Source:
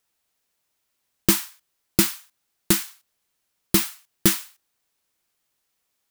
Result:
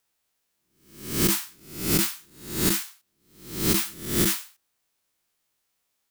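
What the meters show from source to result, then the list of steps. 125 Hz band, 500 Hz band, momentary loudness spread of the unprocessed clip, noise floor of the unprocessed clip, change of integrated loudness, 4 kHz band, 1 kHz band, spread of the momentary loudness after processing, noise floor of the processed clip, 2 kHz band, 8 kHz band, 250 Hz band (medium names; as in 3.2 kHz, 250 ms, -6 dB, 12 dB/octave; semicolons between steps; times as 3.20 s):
+0.5 dB, 0.0 dB, 13 LU, -76 dBFS, -2.0 dB, -1.0 dB, -1.0 dB, 16 LU, -76 dBFS, -1.5 dB, -1.0 dB, -1.5 dB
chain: reverse spectral sustain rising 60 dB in 0.59 s; loudness maximiser +6.5 dB; trim -9 dB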